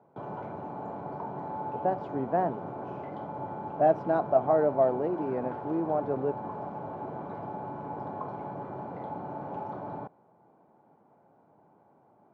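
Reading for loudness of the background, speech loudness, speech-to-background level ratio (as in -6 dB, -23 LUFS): -38.5 LUFS, -28.5 LUFS, 10.0 dB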